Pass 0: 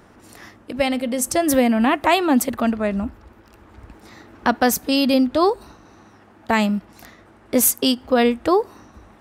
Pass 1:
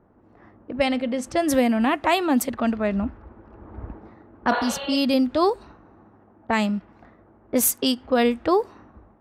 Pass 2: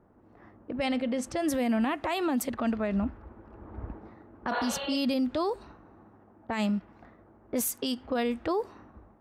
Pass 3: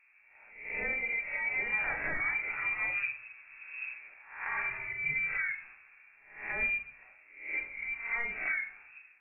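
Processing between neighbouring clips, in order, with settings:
spectral replace 4.55–4.94 s, 380–4500 Hz both; level-controlled noise filter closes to 890 Hz, open at -13 dBFS; level rider gain up to 16.5 dB; trim -8 dB
peak limiter -18 dBFS, peak gain reduction 9.5 dB; trim -3 dB
reverse spectral sustain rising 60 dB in 0.59 s; frequency inversion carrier 2.6 kHz; simulated room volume 37 m³, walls mixed, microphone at 0.45 m; trim -8 dB

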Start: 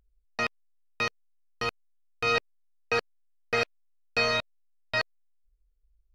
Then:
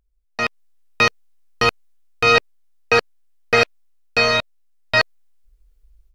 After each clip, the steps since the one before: level rider gain up to 16.5 dB; trim -1 dB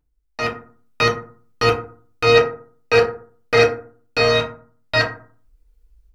FDN reverb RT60 0.44 s, low-frequency decay 1.3×, high-frequency decay 0.45×, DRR -3 dB; trim -3.5 dB

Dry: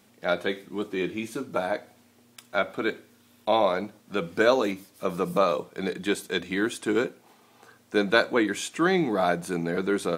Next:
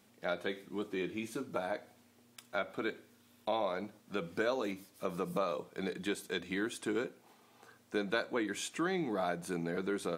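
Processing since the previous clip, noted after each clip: compression 2:1, threshold -28 dBFS, peak gain reduction 8 dB; trim -6 dB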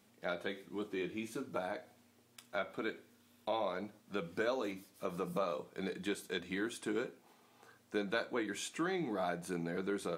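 flange 0.5 Hz, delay 9.3 ms, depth 4.3 ms, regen -69%; trim +2 dB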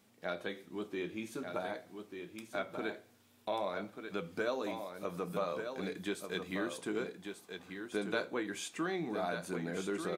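delay 1190 ms -7 dB

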